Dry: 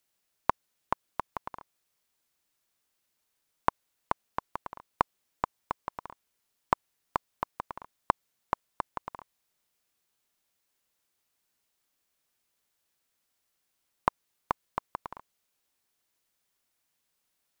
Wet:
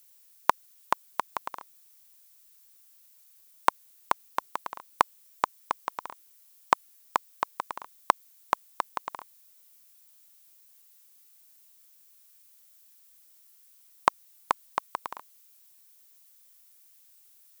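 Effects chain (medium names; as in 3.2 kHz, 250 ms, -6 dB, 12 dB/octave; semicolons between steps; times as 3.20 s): RIAA curve recording; trim +4.5 dB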